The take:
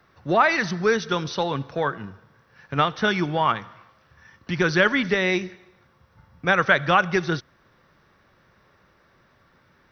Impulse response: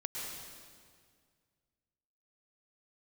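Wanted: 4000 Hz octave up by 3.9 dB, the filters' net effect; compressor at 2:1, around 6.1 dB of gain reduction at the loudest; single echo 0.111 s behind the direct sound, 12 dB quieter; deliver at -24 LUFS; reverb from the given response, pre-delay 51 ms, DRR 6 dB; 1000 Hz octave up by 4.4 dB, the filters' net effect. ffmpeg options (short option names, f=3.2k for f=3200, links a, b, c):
-filter_complex "[0:a]equalizer=f=1k:t=o:g=5.5,equalizer=f=4k:t=o:g=4.5,acompressor=threshold=-20dB:ratio=2,aecho=1:1:111:0.251,asplit=2[a][b];[1:a]atrim=start_sample=2205,adelay=51[c];[b][c]afir=irnorm=-1:irlink=0,volume=-7.5dB[d];[a][d]amix=inputs=2:normalize=0,volume=-1dB"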